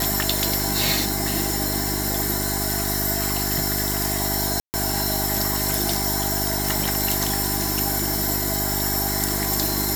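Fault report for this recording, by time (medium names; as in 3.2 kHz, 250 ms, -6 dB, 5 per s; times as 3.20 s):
hum 50 Hz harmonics 8 -28 dBFS
4.60–4.74 s: dropout 139 ms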